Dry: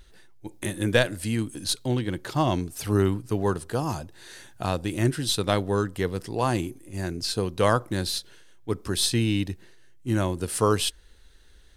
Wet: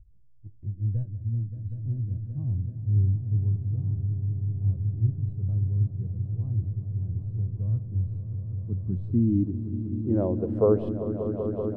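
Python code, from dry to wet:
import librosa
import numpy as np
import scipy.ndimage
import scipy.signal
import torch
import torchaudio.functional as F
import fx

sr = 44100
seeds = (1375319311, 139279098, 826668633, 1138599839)

y = fx.filter_sweep_lowpass(x, sr, from_hz=100.0, to_hz=550.0, start_s=8.12, end_s=10.28, q=2.4)
y = fx.echo_swell(y, sr, ms=192, loudest=5, wet_db=-11.5)
y = y * librosa.db_to_amplitude(-3.0)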